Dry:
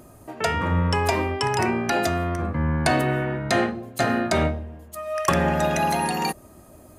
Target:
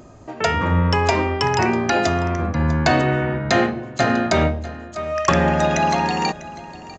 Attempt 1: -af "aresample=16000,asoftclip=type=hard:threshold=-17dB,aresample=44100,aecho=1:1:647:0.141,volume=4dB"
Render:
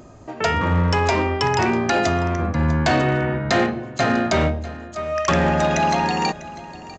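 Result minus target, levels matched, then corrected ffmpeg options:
hard clipping: distortion +19 dB
-af "aresample=16000,asoftclip=type=hard:threshold=-10dB,aresample=44100,aecho=1:1:647:0.141,volume=4dB"

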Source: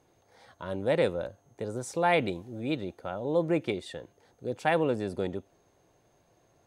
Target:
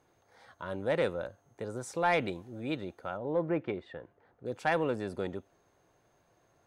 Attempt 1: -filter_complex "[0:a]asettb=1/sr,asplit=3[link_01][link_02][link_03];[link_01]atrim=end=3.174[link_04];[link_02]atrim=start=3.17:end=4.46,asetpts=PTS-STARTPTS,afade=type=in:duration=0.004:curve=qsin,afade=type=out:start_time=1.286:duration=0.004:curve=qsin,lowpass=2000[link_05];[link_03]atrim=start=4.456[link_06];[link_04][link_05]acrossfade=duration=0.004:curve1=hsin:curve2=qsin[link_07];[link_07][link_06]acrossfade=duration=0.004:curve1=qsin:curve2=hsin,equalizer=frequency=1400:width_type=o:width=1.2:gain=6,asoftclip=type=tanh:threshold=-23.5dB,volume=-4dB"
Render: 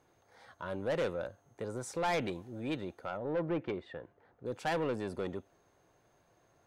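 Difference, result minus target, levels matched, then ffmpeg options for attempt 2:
soft clipping: distortion +12 dB
-filter_complex "[0:a]asettb=1/sr,asplit=3[link_01][link_02][link_03];[link_01]atrim=end=3.174[link_04];[link_02]atrim=start=3.17:end=4.46,asetpts=PTS-STARTPTS,afade=type=in:duration=0.004:curve=qsin,afade=type=out:start_time=1.286:duration=0.004:curve=qsin,lowpass=2000[link_05];[link_03]atrim=start=4.456[link_06];[link_04][link_05]acrossfade=duration=0.004:curve1=hsin:curve2=qsin[link_07];[link_07][link_06]acrossfade=duration=0.004:curve1=qsin:curve2=hsin,equalizer=frequency=1400:width_type=o:width=1.2:gain=6,asoftclip=type=tanh:threshold=-12.5dB,volume=-4dB"

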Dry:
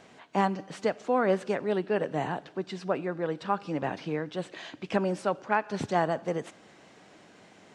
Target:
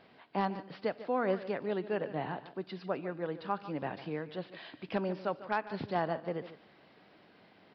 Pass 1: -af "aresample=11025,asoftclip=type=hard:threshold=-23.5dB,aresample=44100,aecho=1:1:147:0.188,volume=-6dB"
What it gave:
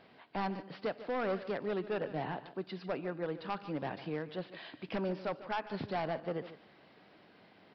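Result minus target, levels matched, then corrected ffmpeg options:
hard clipping: distortion +19 dB
-af "aresample=11025,asoftclip=type=hard:threshold=-14dB,aresample=44100,aecho=1:1:147:0.188,volume=-6dB"

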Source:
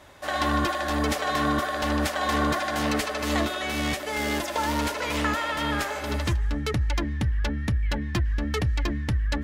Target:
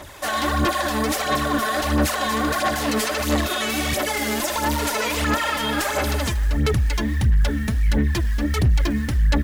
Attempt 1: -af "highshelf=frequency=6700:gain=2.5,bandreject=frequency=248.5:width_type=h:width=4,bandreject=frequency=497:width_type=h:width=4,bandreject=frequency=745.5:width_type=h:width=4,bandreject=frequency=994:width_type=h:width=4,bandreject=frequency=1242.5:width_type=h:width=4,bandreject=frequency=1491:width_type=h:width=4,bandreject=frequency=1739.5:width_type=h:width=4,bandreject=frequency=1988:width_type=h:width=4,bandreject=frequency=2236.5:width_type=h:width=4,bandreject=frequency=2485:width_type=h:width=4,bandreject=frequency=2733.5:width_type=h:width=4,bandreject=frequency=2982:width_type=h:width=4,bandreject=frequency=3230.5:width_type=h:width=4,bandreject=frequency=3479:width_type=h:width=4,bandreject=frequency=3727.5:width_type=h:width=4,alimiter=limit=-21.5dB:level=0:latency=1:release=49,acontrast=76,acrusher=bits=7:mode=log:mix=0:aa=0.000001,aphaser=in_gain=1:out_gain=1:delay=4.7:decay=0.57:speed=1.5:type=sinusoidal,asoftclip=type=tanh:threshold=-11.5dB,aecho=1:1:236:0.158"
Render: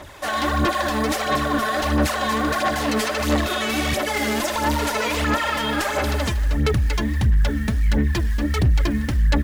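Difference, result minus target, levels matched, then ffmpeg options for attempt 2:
echo-to-direct +7 dB; 8,000 Hz band −3.0 dB
-af "highshelf=frequency=6700:gain=10.5,bandreject=frequency=248.5:width_type=h:width=4,bandreject=frequency=497:width_type=h:width=4,bandreject=frequency=745.5:width_type=h:width=4,bandreject=frequency=994:width_type=h:width=4,bandreject=frequency=1242.5:width_type=h:width=4,bandreject=frequency=1491:width_type=h:width=4,bandreject=frequency=1739.5:width_type=h:width=4,bandreject=frequency=1988:width_type=h:width=4,bandreject=frequency=2236.5:width_type=h:width=4,bandreject=frequency=2485:width_type=h:width=4,bandreject=frequency=2733.5:width_type=h:width=4,bandreject=frequency=2982:width_type=h:width=4,bandreject=frequency=3230.5:width_type=h:width=4,bandreject=frequency=3479:width_type=h:width=4,bandreject=frequency=3727.5:width_type=h:width=4,alimiter=limit=-21.5dB:level=0:latency=1:release=49,acontrast=76,acrusher=bits=7:mode=log:mix=0:aa=0.000001,aphaser=in_gain=1:out_gain=1:delay=4.7:decay=0.57:speed=1.5:type=sinusoidal,asoftclip=type=tanh:threshold=-11.5dB,aecho=1:1:236:0.0708"

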